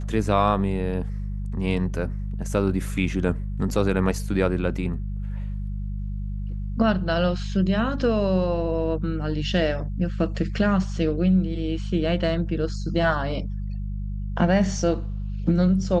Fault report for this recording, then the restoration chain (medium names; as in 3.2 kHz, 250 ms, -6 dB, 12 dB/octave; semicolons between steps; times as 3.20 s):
hum 50 Hz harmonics 4 -29 dBFS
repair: de-hum 50 Hz, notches 4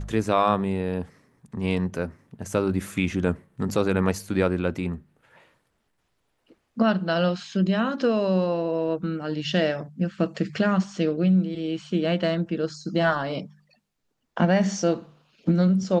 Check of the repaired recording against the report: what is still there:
nothing left